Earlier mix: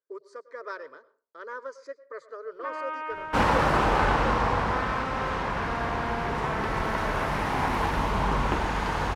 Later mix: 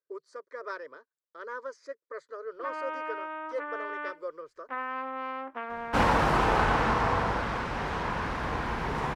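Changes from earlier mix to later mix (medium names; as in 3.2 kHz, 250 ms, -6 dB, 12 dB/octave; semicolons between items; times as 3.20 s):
second sound: entry +2.60 s; reverb: off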